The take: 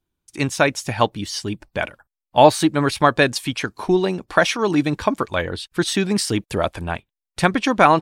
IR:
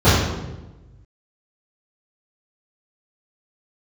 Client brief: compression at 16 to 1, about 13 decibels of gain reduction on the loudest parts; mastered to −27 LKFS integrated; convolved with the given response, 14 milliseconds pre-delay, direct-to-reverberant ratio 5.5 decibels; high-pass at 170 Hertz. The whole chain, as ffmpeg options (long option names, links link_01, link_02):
-filter_complex "[0:a]highpass=170,acompressor=threshold=-19dB:ratio=16,asplit=2[link_01][link_02];[1:a]atrim=start_sample=2205,adelay=14[link_03];[link_02][link_03]afir=irnorm=-1:irlink=0,volume=-31.5dB[link_04];[link_01][link_04]amix=inputs=2:normalize=0,volume=-3dB"